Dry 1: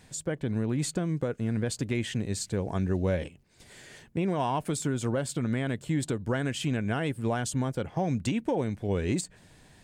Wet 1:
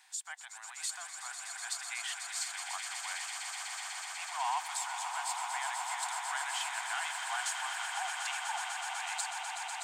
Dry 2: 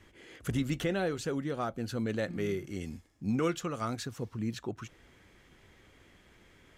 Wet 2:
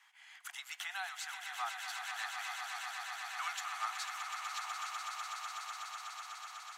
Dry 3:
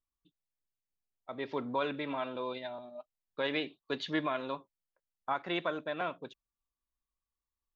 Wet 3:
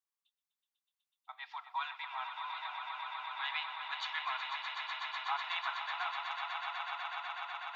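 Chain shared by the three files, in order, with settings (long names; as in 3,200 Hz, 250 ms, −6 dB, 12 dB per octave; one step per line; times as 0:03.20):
Butterworth high-pass 750 Hz 96 dB per octave
on a send: echo that builds up and dies away 124 ms, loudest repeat 8, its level −8.5 dB
on the sum: level −2 dB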